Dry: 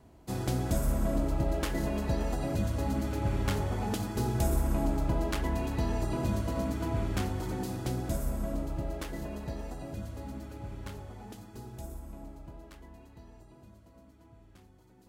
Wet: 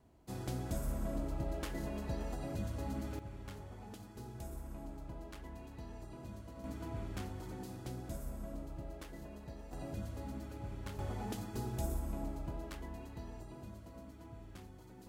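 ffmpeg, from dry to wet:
ffmpeg -i in.wav -af "asetnsamples=nb_out_samples=441:pad=0,asendcmd='3.19 volume volume -18dB;6.64 volume volume -11dB;9.73 volume volume -3dB;10.99 volume volume 5dB',volume=-9dB" out.wav

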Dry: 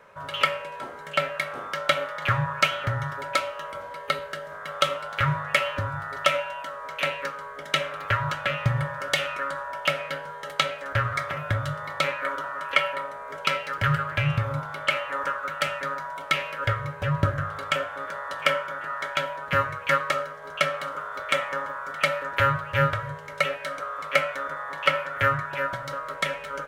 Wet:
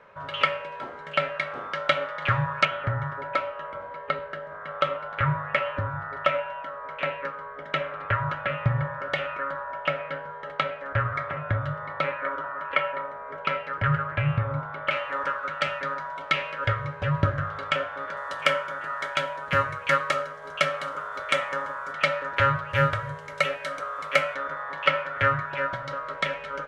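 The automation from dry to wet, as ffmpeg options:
ffmpeg -i in.wav -af "asetnsamples=nb_out_samples=441:pad=0,asendcmd='2.65 lowpass f 2000;14.91 lowpass f 4400;18.17 lowpass f 9500;21.93 lowpass f 5600;22.7 lowpass f 10000;24.34 lowpass f 4400',lowpass=3800" out.wav

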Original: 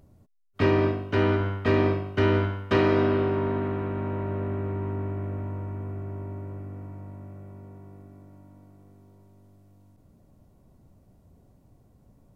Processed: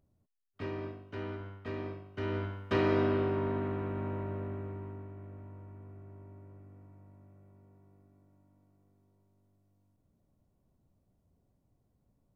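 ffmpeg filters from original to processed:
ffmpeg -i in.wav -af "volume=-6dB,afade=type=in:start_time=2.09:duration=0.84:silence=0.281838,afade=type=out:start_time=4.06:duration=1.02:silence=0.334965" out.wav

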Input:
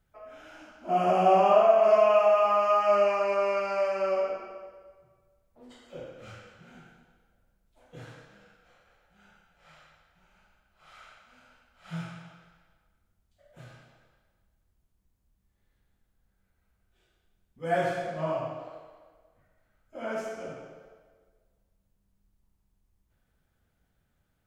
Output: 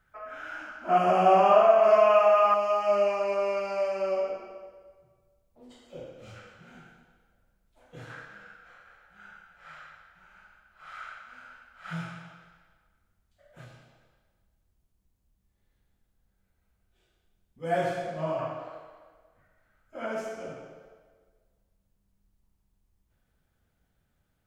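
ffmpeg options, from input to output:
ffmpeg -i in.wav -af "asetnsamples=nb_out_samples=441:pad=0,asendcmd='0.98 equalizer g 5;2.54 equalizer g -6.5;6.36 equalizer g 2.5;8.1 equalizer g 13;11.93 equalizer g 5;13.65 equalizer g -2.5;18.39 equalizer g 6.5;20.06 equalizer g -0.5',equalizer=frequency=1500:width_type=o:width=1.1:gain=14" out.wav

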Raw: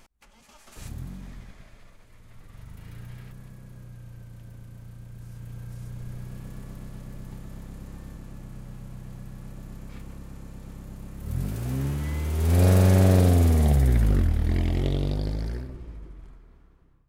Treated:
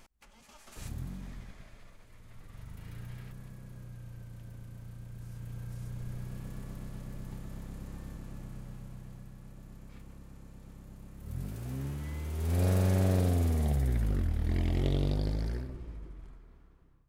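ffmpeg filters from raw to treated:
ffmpeg -i in.wav -af "volume=3.5dB,afade=type=out:start_time=8.41:duration=0.96:silence=0.473151,afade=type=in:start_time=14.18:duration=0.81:silence=0.501187" out.wav

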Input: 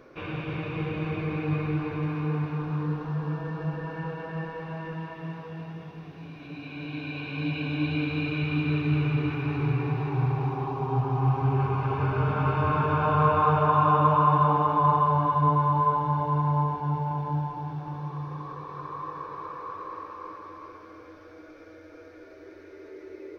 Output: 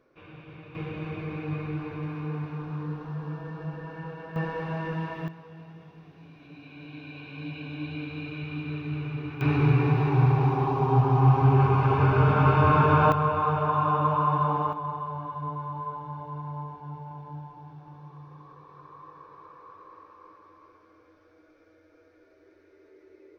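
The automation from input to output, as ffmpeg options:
ffmpeg -i in.wav -af "asetnsamples=nb_out_samples=441:pad=0,asendcmd='0.75 volume volume -4.5dB;4.36 volume volume 4dB;5.28 volume volume -7.5dB;9.41 volume volume 5dB;13.12 volume volume -3.5dB;14.73 volume volume -11.5dB',volume=-13.5dB" out.wav

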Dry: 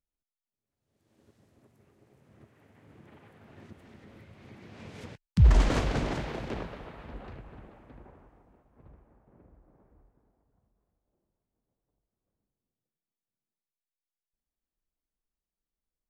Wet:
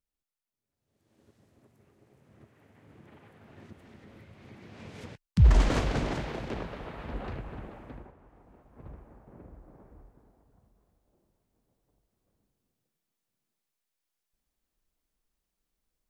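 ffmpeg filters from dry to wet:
ffmpeg -i in.wav -af "volume=19dB,afade=type=in:start_time=6.59:duration=0.67:silence=0.446684,afade=type=out:start_time=7.91:duration=0.24:silence=0.298538,afade=type=in:start_time=8.15:duration=0.73:silence=0.251189" out.wav

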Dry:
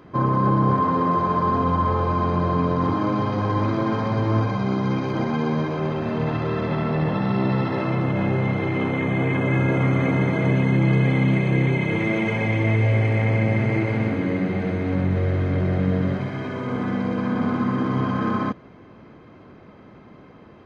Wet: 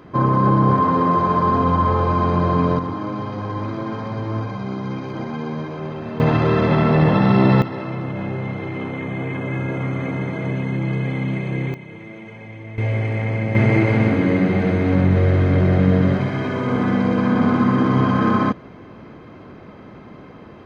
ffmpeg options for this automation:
ffmpeg -i in.wav -af "asetnsamples=nb_out_samples=441:pad=0,asendcmd='2.79 volume volume -4dB;6.2 volume volume 7.5dB;7.62 volume volume -4dB;11.74 volume volume -15dB;12.78 volume volume -2dB;13.55 volume volume 6dB',volume=3.5dB" out.wav

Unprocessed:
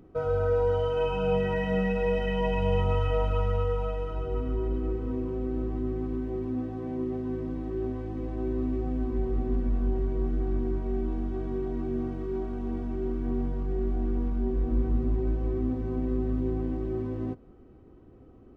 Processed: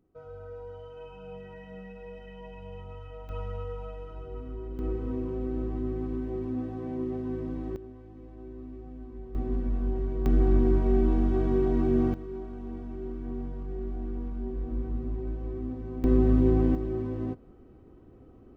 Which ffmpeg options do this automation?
ffmpeg -i in.wav -af "asetnsamples=nb_out_samples=441:pad=0,asendcmd='3.29 volume volume -9dB;4.79 volume volume -1dB;7.76 volume volume -13.5dB;9.35 volume volume -2dB;10.26 volume volume 6.5dB;12.14 volume volume -6dB;16.04 volume volume 7dB;16.75 volume volume 0dB',volume=-17.5dB" out.wav

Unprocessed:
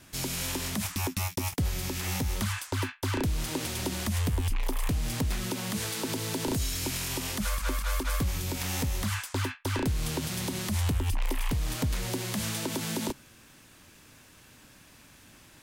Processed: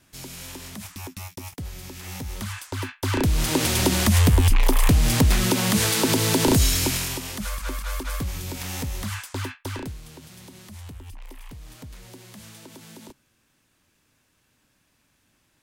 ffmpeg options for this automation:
ffmpeg -i in.wav -af "volume=11.5dB,afade=type=in:start_time=1.97:duration=0.87:silence=0.473151,afade=type=in:start_time=2.84:duration=0.89:silence=0.281838,afade=type=out:start_time=6.66:duration=0.56:silence=0.266073,afade=type=out:start_time=9.62:duration=0.4:silence=0.237137" out.wav

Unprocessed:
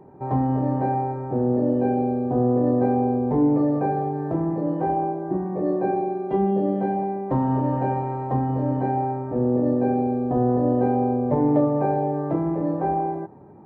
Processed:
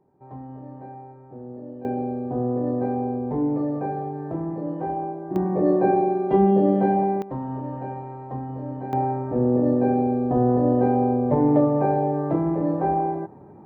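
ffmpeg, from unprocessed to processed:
ffmpeg -i in.wav -af "asetnsamples=nb_out_samples=441:pad=0,asendcmd='1.85 volume volume -4.5dB;5.36 volume volume 4dB;7.22 volume volume -8.5dB;8.93 volume volume 1dB',volume=-16.5dB" out.wav

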